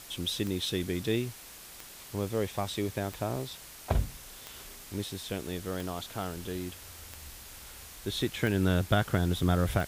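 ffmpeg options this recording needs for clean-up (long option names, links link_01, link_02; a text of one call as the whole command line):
ffmpeg -i in.wav -af "adeclick=threshold=4,afftdn=noise_reduction=27:noise_floor=-48" out.wav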